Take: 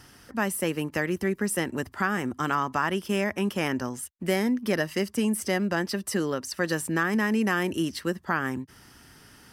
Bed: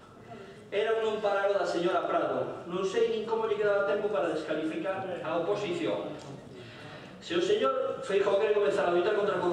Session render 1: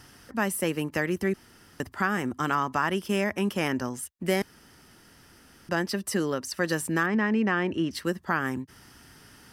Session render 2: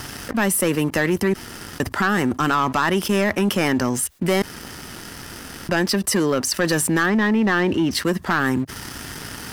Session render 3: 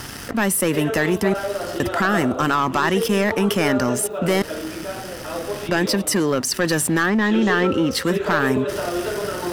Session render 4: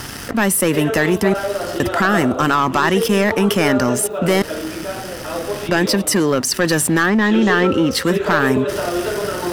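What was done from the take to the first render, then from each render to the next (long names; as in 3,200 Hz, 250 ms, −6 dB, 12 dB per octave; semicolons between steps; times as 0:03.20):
0:01.34–0:01.80: fill with room tone; 0:04.42–0:05.69: fill with room tone; 0:07.06–0:07.91: low-pass filter 3,000 Hz
leveller curve on the samples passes 2; envelope flattener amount 50%
mix in bed +1.5 dB
level +3.5 dB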